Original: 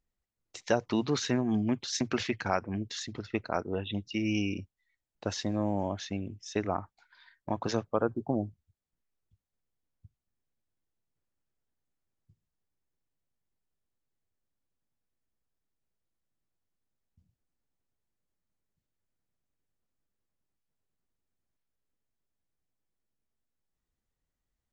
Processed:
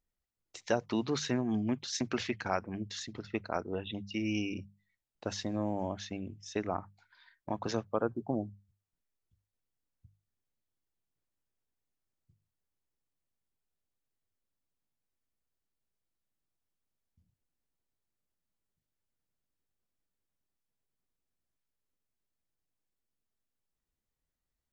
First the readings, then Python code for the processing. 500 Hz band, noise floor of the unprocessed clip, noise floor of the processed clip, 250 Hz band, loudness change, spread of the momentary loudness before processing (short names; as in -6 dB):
-3.0 dB, under -85 dBFS, under -85 dBFS, -3.5 dB, -3.0 dB, 9 LU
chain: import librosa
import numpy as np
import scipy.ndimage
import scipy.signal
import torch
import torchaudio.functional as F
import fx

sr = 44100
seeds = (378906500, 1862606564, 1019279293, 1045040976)

y = fx.hum_notches(x, sr, base_hz=50, count=4)
y = y * librosa.db_to_amplitude(-3.0)